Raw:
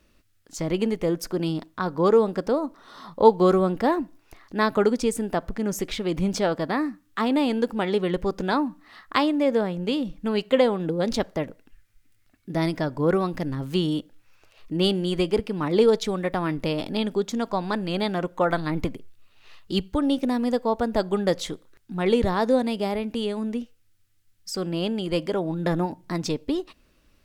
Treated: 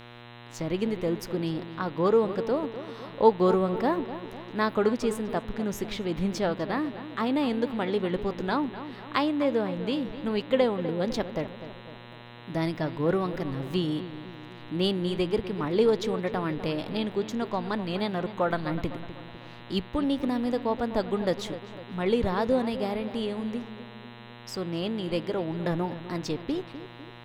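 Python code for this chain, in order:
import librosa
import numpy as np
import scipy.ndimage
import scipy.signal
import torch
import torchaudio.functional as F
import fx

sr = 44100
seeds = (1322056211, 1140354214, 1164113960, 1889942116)

y = fx.dmg_buzz(x, sr, base_hz=120.0, harmonics=34, level_db=-43.0, tilt_db=-3, odd_only=False)
y = fx.echo_filtered(y, sr, ms=251, feedback_pct=54, hz=2000.0, wet_db=-12.0)
y = fx.dynamic_eq(y, sr, hz=8400.0, q=1.0, threshold_db=-51.0, ratio=4.0, max_db=-5)
y = F.gain(torch.from_numpy(y), -4.0).numpy()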